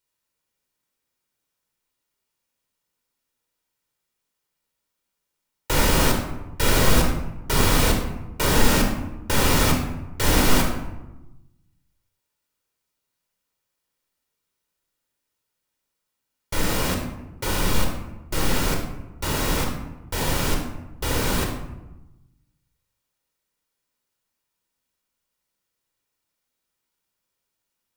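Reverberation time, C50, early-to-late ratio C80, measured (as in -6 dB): 1.0 s, 4.5 dB, 7.5 dB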